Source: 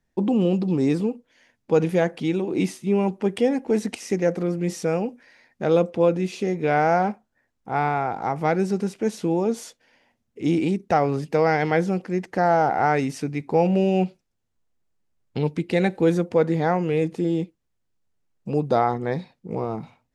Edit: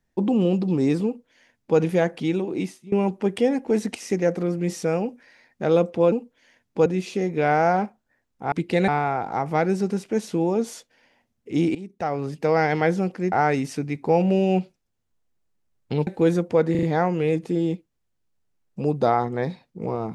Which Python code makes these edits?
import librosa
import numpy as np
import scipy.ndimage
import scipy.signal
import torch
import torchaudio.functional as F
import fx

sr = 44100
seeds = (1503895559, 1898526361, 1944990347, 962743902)

y = fx.edit(x, sr, fx.duplicate(start_s=1.05, length_s=0.74, to_s=6.12),
    fx.fade_out_to(start_s=2.38, length_s=0.54, floor_db=-20.5),
    fx.fade_in_from(start_s=10.65, length_s=0.85, floor_db=-17.0),
    fx.cut(start_s=12.22, length_s=0.55),
    fx.move(start_s=15.52, length_s=0.36, to_s=7.78),
    fx.stutter(start_s=16.52, slice_s=0.04, count=4), tone=tone)